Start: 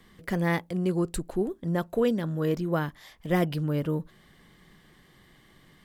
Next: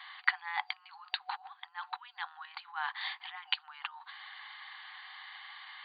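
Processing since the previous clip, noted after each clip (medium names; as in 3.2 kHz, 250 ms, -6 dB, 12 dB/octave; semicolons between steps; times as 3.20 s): compressor with a negative ratio -35 dBFS, ratio -1; FFT band-pass 740–4700 Hz; trim +6 dB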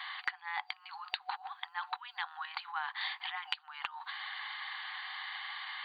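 compression 8:1, threshold -40 dBFS, peak gain reduction 18.5 dB; trim +6.5 dB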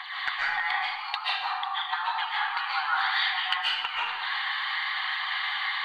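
phaser 0.59 Hz, delay 3.9 ms, feedback 45%; reverberation RT60 1.1 s, pre-delay 100 ms, DRR -7.5 dB; trim +3.5 dB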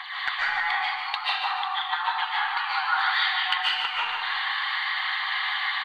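feedback delay 149 ms, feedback 48%, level -8 dB; trim +1.5 dB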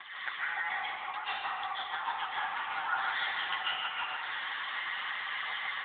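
repeats whose band climbs or falls 255 ms, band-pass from 390 Hz, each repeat 0.7 oct, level -1 dB; trim -7.5 dB; AMR-NB 10.2 kbps 8 kHz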